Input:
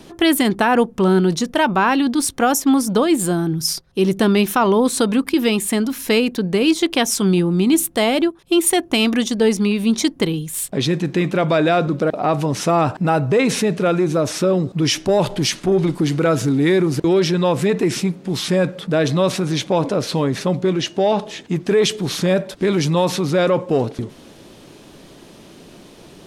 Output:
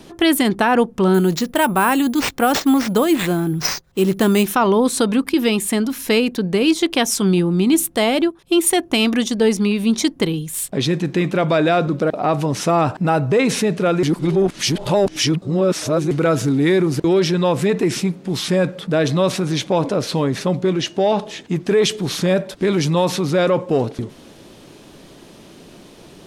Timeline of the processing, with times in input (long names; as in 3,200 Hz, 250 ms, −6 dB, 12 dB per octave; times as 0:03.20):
0:01.14–0:04.45: bad sample-rate conversion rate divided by 4×, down none, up hold
0:14.03–0:16.11: reverse